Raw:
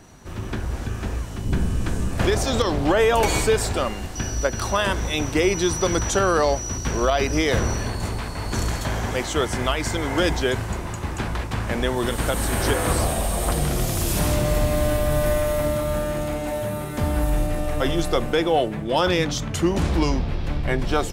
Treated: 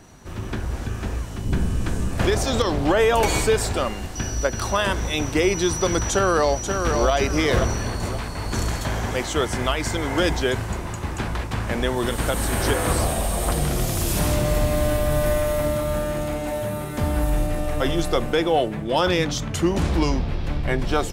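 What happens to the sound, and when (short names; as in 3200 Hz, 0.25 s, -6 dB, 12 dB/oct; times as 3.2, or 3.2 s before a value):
6.1–7.11 echo throw 0.53 s, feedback 35%, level -5.5 dB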